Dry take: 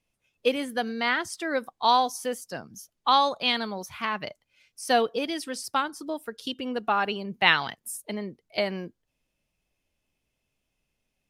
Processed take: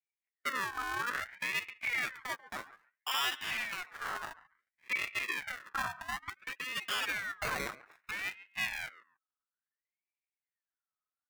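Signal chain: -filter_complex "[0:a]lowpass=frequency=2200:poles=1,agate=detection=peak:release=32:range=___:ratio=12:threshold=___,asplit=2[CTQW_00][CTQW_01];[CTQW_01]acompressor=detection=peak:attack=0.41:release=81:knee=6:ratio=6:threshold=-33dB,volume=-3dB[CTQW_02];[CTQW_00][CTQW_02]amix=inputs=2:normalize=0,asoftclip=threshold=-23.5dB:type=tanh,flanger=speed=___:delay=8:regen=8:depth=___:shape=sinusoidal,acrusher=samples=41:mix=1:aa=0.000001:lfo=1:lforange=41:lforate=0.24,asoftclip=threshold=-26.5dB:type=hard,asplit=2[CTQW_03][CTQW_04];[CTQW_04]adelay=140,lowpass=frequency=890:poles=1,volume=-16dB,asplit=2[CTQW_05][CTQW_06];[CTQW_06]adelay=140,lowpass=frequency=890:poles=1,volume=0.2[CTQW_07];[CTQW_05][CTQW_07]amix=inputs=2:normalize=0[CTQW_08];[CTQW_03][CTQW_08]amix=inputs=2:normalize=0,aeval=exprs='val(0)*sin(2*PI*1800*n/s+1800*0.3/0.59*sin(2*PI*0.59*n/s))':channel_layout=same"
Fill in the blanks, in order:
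-21dB, -48dB, 0.8, 3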